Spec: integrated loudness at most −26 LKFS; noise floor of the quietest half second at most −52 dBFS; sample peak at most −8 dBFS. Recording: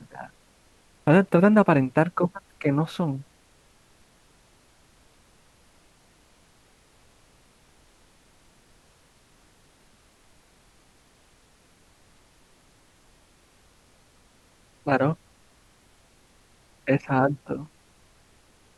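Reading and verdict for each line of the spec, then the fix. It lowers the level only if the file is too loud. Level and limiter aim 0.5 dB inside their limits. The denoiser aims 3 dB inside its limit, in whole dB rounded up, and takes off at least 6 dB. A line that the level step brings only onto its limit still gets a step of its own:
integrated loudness −23.5 LKFS: out of spec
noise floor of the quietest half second −59 dBFS: in spec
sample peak −5.5 dBFS: out of spec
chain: level −3 dB

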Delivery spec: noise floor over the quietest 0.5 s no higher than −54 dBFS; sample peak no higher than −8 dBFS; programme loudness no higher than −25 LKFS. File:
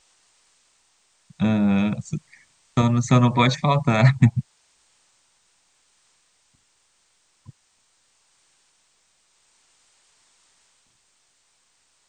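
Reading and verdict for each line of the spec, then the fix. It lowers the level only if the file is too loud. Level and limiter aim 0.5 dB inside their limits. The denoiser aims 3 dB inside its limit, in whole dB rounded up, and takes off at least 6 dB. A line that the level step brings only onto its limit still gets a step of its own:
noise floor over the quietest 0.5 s −65 dBFS: in spec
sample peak −4.0 dBFS: out of spec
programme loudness −20.5 LKFS: out of spec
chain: level −5 dB

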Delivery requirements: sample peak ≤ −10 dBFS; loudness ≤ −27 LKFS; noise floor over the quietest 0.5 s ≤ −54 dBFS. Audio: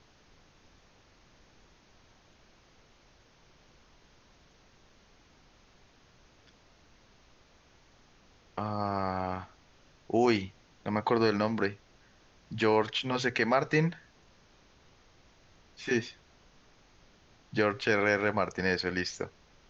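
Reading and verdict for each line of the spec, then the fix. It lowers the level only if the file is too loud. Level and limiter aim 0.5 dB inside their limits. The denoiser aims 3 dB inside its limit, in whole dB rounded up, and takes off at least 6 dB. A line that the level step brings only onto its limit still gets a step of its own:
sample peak −12.0 dBFS: in spec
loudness −30.0 LKFS: in spec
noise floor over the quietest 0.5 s −62 dBFS: in spec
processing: no processing needed

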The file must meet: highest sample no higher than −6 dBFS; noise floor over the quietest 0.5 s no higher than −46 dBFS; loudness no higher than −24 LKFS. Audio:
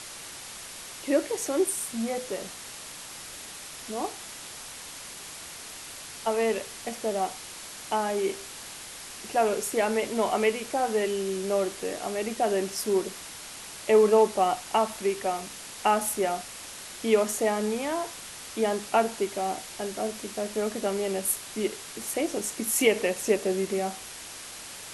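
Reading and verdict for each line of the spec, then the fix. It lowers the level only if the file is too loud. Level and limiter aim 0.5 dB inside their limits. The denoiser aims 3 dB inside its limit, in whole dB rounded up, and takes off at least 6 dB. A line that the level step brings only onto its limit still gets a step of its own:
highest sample −8.5 dBFS: in spec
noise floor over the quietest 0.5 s −42 dBFS: out of spec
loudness −28.0 LKFS: in spec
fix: broadband denoise 7 dB, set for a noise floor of −42 dBFS

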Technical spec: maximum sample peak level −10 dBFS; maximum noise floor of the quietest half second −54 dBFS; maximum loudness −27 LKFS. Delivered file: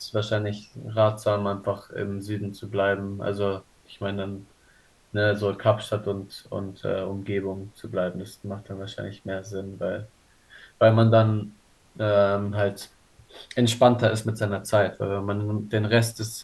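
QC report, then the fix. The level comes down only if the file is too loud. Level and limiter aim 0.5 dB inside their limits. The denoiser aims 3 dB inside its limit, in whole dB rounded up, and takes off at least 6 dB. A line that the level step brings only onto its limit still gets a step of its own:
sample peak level −5.5 dBFS: out of spec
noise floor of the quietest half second −58 dBFS: in spec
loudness −25.5 LKFS: out of spec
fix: level −2 dB
brickwall limiter −10.5 dBFS

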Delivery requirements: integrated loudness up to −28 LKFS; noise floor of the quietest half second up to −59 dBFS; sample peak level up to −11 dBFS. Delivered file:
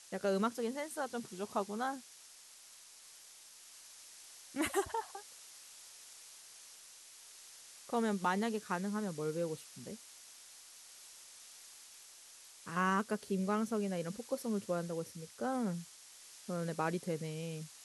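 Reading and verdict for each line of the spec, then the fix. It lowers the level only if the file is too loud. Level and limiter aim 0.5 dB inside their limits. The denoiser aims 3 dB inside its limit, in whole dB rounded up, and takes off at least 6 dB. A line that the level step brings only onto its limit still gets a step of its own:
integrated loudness −37.5 LKFS: in spec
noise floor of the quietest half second −57 dBFS: out of spec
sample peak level −19.5 dBFS: in spec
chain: broadband denoise 6 dB, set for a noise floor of −57 dBFS

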